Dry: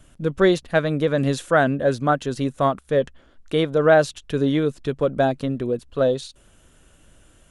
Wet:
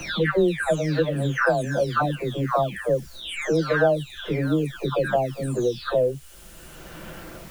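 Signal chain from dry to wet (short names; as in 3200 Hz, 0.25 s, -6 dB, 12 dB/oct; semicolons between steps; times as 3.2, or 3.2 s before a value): spectral delay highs early, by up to 0.751 s; requantised 10-bit, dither triangular; three-band squash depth 70%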